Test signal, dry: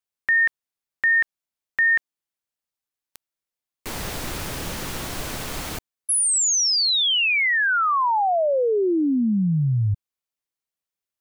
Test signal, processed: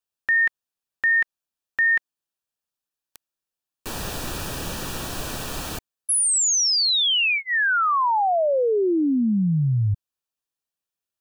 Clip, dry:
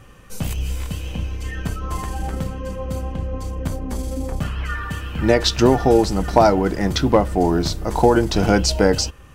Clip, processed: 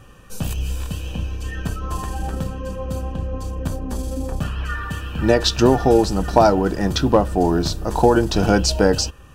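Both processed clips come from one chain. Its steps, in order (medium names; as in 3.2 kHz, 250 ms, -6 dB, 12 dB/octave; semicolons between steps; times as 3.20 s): Butterworth band-stop 2.1 kHz, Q 5.7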